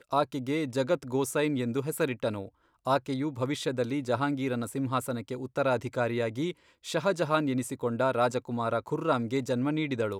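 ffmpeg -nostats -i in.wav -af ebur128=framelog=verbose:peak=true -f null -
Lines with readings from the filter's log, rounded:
Integrated loudness:
  I:         -29.9 LUFS
  Threshold: -40.0 LUFS
Loudness range:
  LRA:         1.9 LU
  Threshold: -50.2 LUFS
  LRA low:   -31.0 LUFS
  LRA high:  -29.1 LUFS
True peak:
  Peak:      -11.6 dBFS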